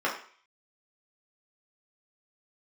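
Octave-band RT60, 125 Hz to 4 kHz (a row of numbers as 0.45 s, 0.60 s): 0.35 s, 0.40 s, 0.45 s, 0.50 s, 0.55 s, 0.55 s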